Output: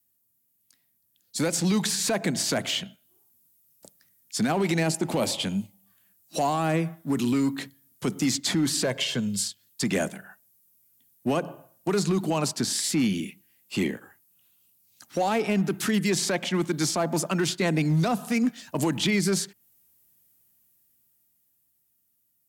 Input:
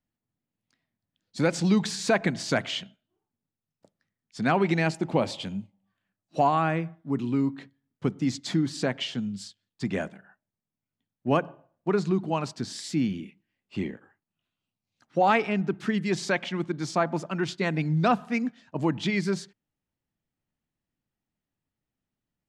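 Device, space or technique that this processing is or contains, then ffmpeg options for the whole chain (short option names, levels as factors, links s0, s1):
FM broadcast chain: -filter_complex "[0:a]asettb=1/sr,asplit=3[s0][s1][s2];[s0]atrim=end=8.844[s3];[s1]atrim=start=8.84:end=9.42,asetpts=PTS-STARTPTS,afade=t=in:d=0.004:c=qsin,afade=t=out:st=0.576:d=0.004:c=qsin,aecho=1:1:1.9:0.54,atrim=end_sample=25578[s4];[s2]atrim=start=9.416[s5];[s3][s4]acrossfade=d=0.004:c1=hsin:c2=qsin[s6];[s6][s5]acrossfade=d=0.004:c1=qsin:c2=hsin,highpass=50,dynaudnorm=f=190:g=21:m=3.16,acrossover=split=150|810|3000[s7][s8][s9][s10];[s7]acompressor=threshold=0.0112:ratio=4[s11];[s8]acompressor=threshold=0.126:ratio=4[s12];[s9]acompressor=threshold=0.0251:ratio=4[s13];[s10]acompressor=threshold=0.00631:ratio=4[s14];[s11][s12][s13][s14]amix=inputs=4:normalize=0,aemphasis=mode=production:type=50fm,alimiter=limit=0.158:level=0:latency=1:release=21,asoftclip=type=hard:threshold=0.133,lowpass=f=15000:w=0.5412,lowpass=f=15000:w=1.3066,aemphasis=mode=production:type=50fm"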